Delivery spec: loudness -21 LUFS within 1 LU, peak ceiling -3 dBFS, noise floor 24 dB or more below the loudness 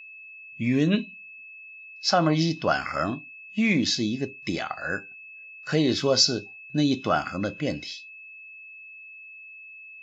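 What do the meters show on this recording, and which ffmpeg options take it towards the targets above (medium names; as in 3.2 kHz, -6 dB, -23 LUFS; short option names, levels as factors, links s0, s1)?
steady tone 2.6 kHz; tone level -42 dBFS; loudness -25.5 LUFS; peak level -6.5 dBFS; loudness target -21.0 LUFS
-> -af "bandreject=f=2600:w=30"
-af "volume=1.68,alimiter=limit=0.708:level=0:latency=1"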